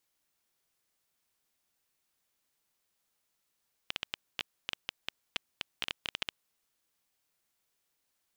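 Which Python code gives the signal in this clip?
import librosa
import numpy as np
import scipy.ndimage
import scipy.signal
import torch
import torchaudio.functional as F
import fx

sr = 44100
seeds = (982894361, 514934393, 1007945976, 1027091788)

y = fx.geiger_clicks(sr, seeds[0], length_s=2.6, per_s=9.0, level_db=-15.0)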